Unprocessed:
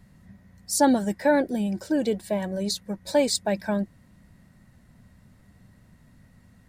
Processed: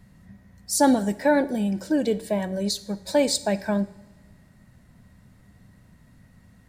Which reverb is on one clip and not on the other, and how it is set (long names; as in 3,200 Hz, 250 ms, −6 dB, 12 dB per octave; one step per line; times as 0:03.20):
coupled-rooms reverb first 0.58 s, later 2 s, from −18 dB, DRR 12.5 dB
level +1 dB